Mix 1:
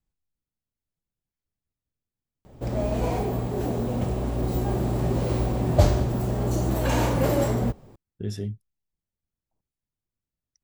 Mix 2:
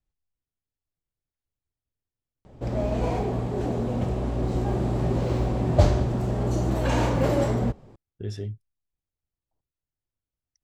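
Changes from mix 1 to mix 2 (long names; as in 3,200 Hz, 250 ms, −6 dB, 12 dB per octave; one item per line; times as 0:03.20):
speech: add parametric band 200 Hz −8 dB 0.58 octaves
master: add high-frequency loss of the air 55 metres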